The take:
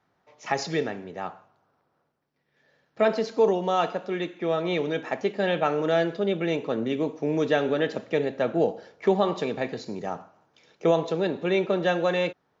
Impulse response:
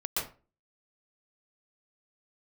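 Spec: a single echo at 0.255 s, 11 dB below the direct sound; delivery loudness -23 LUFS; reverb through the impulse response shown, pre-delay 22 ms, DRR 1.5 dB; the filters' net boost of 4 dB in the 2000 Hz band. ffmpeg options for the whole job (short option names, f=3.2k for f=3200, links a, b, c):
-filter_complex "[0:a]equalizer=f=2k:t=o:g=5,aecho=1:1:255:0.282,asplit=2[a][b];[1:a]atrim=start_sample=2205,adelay=22[c];[b][c]afir=irnorm=-1:irlink=0,volume=-7.5dB[d];[a][d]amix=inputs=2:normalize=0,volume=-0.5dB"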